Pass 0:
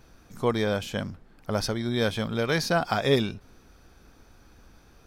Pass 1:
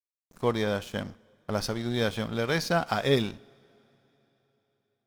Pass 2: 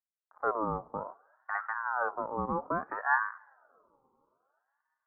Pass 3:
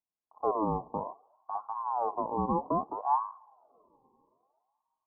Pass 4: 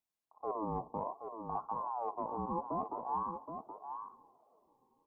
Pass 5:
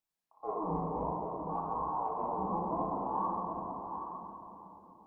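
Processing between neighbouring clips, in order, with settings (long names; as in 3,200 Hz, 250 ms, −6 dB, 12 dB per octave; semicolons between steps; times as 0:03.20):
dead-zone distortion −41.5 dBFS; coupled-rooms reverb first 0.54 s, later 3.8 s, from −19 dB, DRR 18 dB; level −1 dB
inverse Chebyshev low-pass filter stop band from 2,400 Hz, stop band 70 dB; ring modulator whose carrier an LFO sweeps 1,000 Hz, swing 35%, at 0.61 Hz
Chebyshev low-pass with heavy ripple 1,100 Hz, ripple 3 dB; notch filter 550 Hz, Q 12; level +5.5 dB
reversed playback; downward compressor, threshold −36 dBFS, peak gain reduction 13 dB; reversed playback; single-tap delay 773 ms −7.5 dB; level +1.5 dB
rectangular room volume 180 cubic metres, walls hard, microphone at 0.62 metres; level −1.5 dB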